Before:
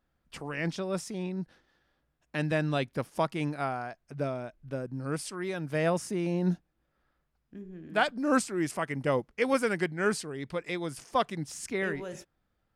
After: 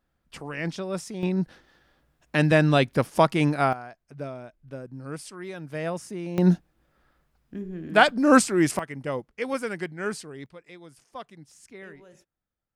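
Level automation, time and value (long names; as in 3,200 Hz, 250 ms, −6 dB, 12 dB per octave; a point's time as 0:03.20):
+1.5 dB
from 0:01.23 +9.5 dB
from 0:03.73 −3 dB
from 0:06.38 +9 dB
from 0:08.79 −2.5 dB
from 0:10.46 −12.5 dB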